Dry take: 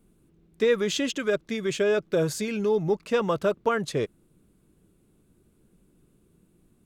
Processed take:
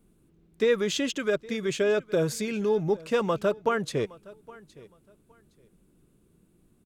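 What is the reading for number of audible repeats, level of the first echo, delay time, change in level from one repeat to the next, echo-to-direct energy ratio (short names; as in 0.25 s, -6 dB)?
2, -21.5 dB, 0.815 s, -13.0 dB, -21.5 dB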